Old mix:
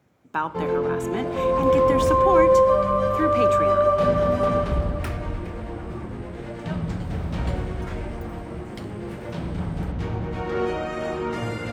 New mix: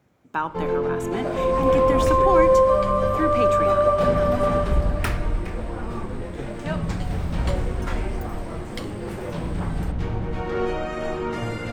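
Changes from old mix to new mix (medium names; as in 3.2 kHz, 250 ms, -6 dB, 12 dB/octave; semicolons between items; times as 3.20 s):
second sound +8.0 dB; master: remove high-pass 57 Hz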